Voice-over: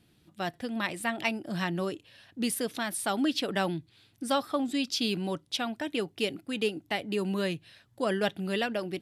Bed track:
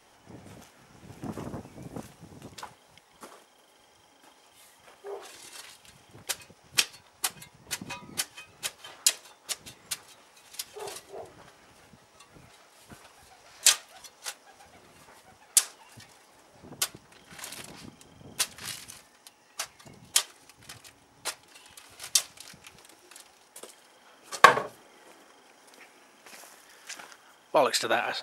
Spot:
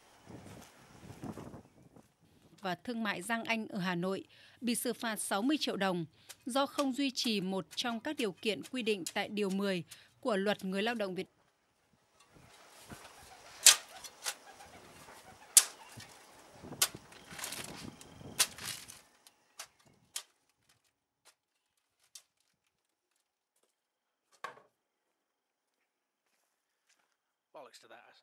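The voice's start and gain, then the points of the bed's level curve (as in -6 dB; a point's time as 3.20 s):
2.25 s, -4.0 dB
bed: 1.10 s -3 dB
1.93 s -19 dB
11.78 s -19 dB
12.71 s -0.5 dB
18.39 s -0.5 dB
21.36 s -29.5 dB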